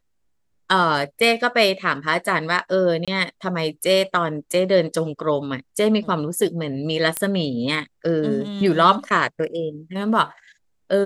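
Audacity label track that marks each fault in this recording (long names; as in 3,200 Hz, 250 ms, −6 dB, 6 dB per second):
3.050000	3.080000	drop-out 26 ms
7.170000	7.170000	click −6 dBFS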